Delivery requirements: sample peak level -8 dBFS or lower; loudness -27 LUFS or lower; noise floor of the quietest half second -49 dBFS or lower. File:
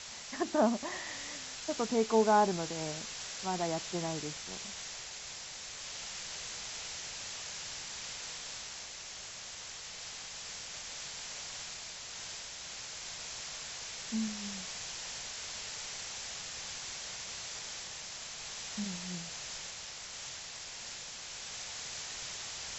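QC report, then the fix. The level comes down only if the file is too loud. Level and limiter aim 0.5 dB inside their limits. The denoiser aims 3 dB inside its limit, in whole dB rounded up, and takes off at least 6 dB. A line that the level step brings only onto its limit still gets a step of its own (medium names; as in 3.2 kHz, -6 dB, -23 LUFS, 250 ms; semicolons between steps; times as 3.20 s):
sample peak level -15.5 dBFS: pass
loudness -37.5 LUFS: pass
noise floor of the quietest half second -46 dBFS: fail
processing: noise reduction 6 dB, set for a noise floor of -46 dBFS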